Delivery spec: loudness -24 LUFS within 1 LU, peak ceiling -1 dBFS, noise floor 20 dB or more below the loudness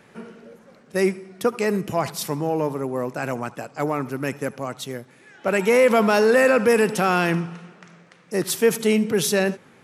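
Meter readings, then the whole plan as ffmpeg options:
loudness -21.5 LUFS; peak -6.5 dBFS; loudness target -24.0 LUFS
-> -af "volume=-2.5dB"

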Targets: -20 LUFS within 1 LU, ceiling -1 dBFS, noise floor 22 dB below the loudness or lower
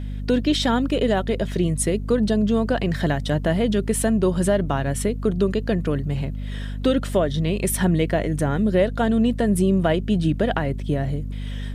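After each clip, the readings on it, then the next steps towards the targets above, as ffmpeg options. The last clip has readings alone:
hum 50 Hz; harmonics up to 250 Hz; hum level -26 dBFS; loudness -22.0 LUFS; peak -7.5 dBFS; loudness target -20.0 LUFS
-> -af "bandreject=f=50:t=h:w=6,bandreject=f=100:t=h:w=6,bandreject=f=150:t=h:w=6,bandreject=f=200:t=h:w=6,bandreject=f=250:t=h:w=6"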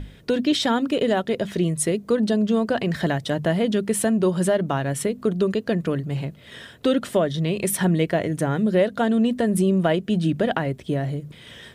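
hum none; loudness -22.5 LUFS; peak -7.0 dBFS; loudness target -20.0 LUFS
-> -af "volume=2.5dB"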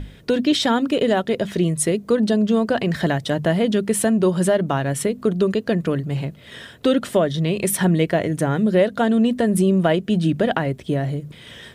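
loudness -20.0 LUFS; peak -4.5 dBFS; noise floor -44 dBFS

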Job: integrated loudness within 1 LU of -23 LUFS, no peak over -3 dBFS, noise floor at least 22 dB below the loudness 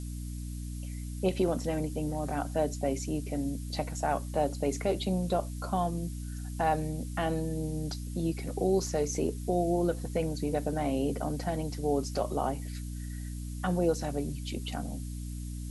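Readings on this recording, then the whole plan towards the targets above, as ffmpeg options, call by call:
hum 60 Hz; harmonics up to 300 Hz; hum level -35 dBFS; noise floor -38 dBFS; noise floor target -55 dBFS; loudness -32.5 LUFS; peak -15.5 dBFS; loudness target -23.0 LUFS
-> -af "bandreject=f=60:t=h:w=6,bandreject=f=120:t=h:w=6,bandreject=f=180:t=h:w=6,bandreject=f=240:t=h:w=6,bandreject=f=300:t=h:w=6"
-af "afftdn=nr=17:nf=-38"
-af "volume=9.5dB"

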